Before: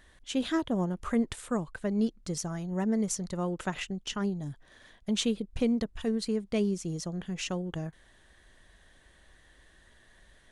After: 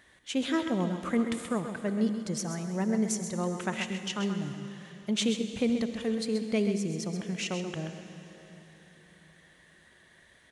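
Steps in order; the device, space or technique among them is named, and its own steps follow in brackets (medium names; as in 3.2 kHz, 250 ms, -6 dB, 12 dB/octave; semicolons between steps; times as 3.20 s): PA in a hall (high-pass 110 Hz 12 dB/octave; peaking EQ 2.2 kHz +5 dB 0.42 oct; delay 131 ms -9 dB; reverberation RT60 3.7 s, pre-delay 51 ms, DRR 9 dB)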